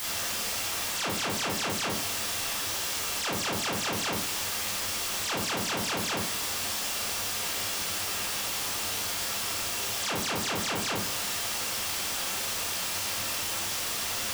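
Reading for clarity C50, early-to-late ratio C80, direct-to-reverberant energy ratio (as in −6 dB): 3.5 dB, 9.0 dB, −5.5 dB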